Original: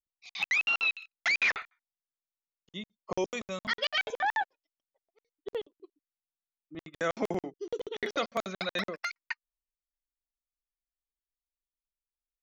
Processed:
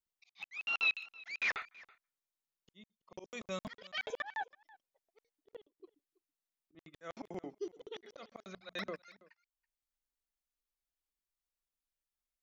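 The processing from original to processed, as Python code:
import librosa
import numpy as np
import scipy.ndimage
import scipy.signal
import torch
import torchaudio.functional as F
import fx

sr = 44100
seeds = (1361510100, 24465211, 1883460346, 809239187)

y = fx.auto_swell(x, sr, attack_ms=466.0)
y = fx.hum_notches(y, sr, base_hz=60, count=4, at=(8.53, 9.0))
y = y + 10.0 ** (-22.5 / 20.0) * np.pad(y, (int(328 * sr / 1000.0), 0))[:len(y)]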